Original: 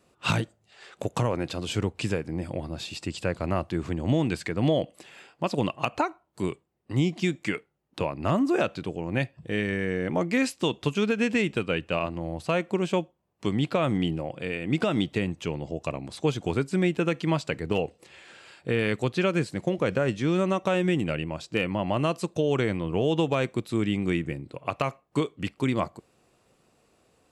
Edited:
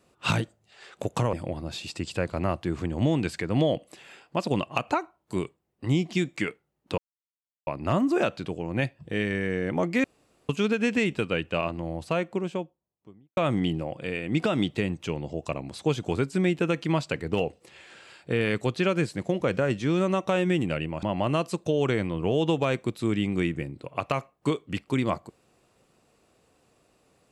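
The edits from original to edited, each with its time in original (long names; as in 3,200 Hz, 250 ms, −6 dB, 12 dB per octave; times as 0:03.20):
0:01.33–0:02.40: remove
0:08.05: splice in silence 0.69 s
0:10.42–0:10.87: fill with room tone
0:12.24–0:13.75: fade out and dull
0:21.41–0:21.73: remove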